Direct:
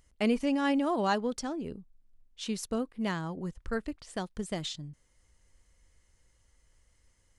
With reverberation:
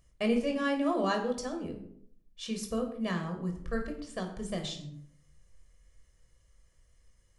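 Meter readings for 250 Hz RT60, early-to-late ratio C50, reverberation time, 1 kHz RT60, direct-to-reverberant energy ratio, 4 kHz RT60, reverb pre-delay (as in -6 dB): 0.75 s, 8.5 dB, 0.65 s, 0.60 s, 3.5 dB, 0.40 s, 17 ms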